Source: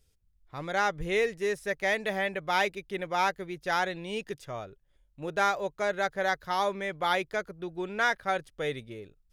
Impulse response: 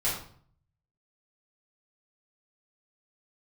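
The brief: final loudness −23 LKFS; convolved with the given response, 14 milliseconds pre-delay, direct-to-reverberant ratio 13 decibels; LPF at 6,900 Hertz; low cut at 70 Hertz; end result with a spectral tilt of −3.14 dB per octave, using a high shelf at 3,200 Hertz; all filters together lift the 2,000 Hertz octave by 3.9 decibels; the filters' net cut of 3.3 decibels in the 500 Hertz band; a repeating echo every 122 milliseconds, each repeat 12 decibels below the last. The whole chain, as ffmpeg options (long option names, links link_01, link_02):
-filter_complex "[0:a]highpass=70,lowpass=6900,equalizer=frequency=500:width_type=o:gain=-4.5,equalizer=frequency=2000:width_type=o:gain=4,highshelf=frequency=3200:gain=4,aecho=1:1:122|244|366:0.251|0.0628|0.0157,asplit=2[link_01][link_02];[1:a]atrim=start_sample=2205,adelay=14[link_03];[link_02][link_03]afir=irnorm=-1:irlink=0,volume=-21.5dB[link_04];[link_01][link_04]amix=inputs=2:normalize=0,volume=5dB"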